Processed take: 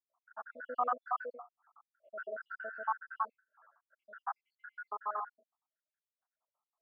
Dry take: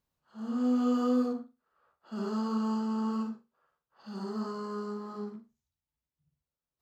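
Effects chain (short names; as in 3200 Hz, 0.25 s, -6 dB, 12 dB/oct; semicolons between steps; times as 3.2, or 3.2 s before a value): random spectral dropouts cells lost 76%; Chebyshev band-pass 650–1600 Hz, order 3; gain +14.5 dB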